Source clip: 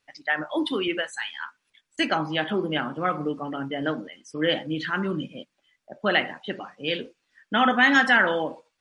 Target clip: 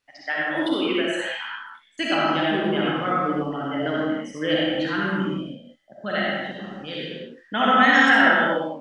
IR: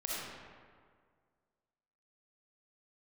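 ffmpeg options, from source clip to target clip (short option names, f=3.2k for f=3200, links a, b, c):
-filter_complex "[0:a]asettb=1/sr,asplit=3[a][b][c];[a]atrim=end=5.294[d];[b]atrim=start=5.29:end=7,asetpts=PTS-STARTPTS,afade=t=in:d=0.004:c=qsin,afade=t=out:st=1.706:d=0.004:c=qsin,equalizer=f=400:t=o:w=0.67:g=-9,equalizer=f=1k:t=o:w=0.67:g=-8,equalizer=f=2.5k:t=o:w=0.67:g=-9[e];[c]atrim=start=6.996[f];[d][e]acrossfade=d=0.004:c1=hsin:c2=qsin[g];[g][f]acrossfade=d=0.004:c1=qsin:c2=hsin[h];[1:a]atrim=start_sample=2205,afade=t=out:st=0.38:d=0.01,atrim=end_sample=17199[i];[h][i]afir=irnorm=-1:irlink=0"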